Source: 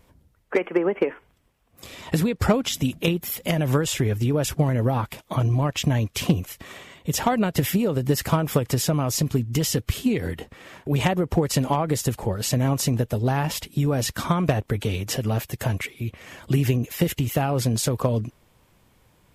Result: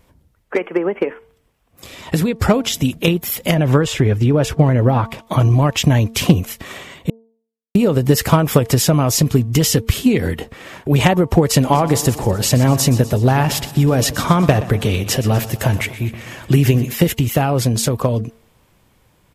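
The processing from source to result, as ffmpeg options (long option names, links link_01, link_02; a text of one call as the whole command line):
ffmpeg -i in.wav -filter_complex "[0:a]asettb=1/sr,asplit=3[link_01][link_02][link_03];[link_01]atrim=end=3.544[link_04];[link_02]atrim=start=3.54:end=5.27,asetpts=PTS-STARTPTS,afade=type=in:duration=0.004:curve=qsin,afade=type=out:start_time=1.726:duration=0.004:curve=qsin,aemphasis=mode=reproduction:type=50kf[link_05];[link_03]atrim=start=5.266[link_06];[link_04][link_05]acrossfade=duration=0.004:curve1=hsin:curve2=qsin[link_07];[link_07][link_06]acrossfade=duration=0.004:curve1=qsin:curve2=hsin,asplit=3[link_08][link_09][link_10];[link_08]afade=type=out:start_time=11.71:duration=0.02[link_11];[link_09]aecho=1:1:123|246|369|492|615|738:0.178|0.101|0.0578|0.0329|0.0188|0.0107,afade=type=in:start_time=11.71:duration=0.02,afade=type=out:start_time=16.92:duration=0.02[link_12];[link_10]afade=type=in:start_time=16.92:duration=0.02[link_13];[link_11][link_12][link_13]amix=inputs=3:normalize=0,asplit=3[link_14][link_15][link_16];[link_14]atrim=end=7.1,asetpts=PTS-STARTPTS,afade=type=out:start_time=7.096:duration=0.004:curve=hsin[link_17];[link_15]atrim=start=7.1:end=7.75,asetpts=PTS-STARTPTS,volume=0[link_18];[link_16]atrim=start=7.75,asetpts=PTS-STARTPTS,afade=type=in:duration=0.004:curve=hsin[link_19];[link_17][link_18][link_19]concat=n=3:v=0:a=1,bandreject=frequency=226:width_type=h:width=4,bandreject=frequency=452:width_type=h:width=4,bandreject=frequency=678:width_type=h:width=4,bandreject=frequency=904:width_type=h:width=4,bandreject=frequency=1130:width_type=h:width=4,dynaudnorm=framelen=320:gausssize=17:maxgain=6dB,volume=3dB" out.wav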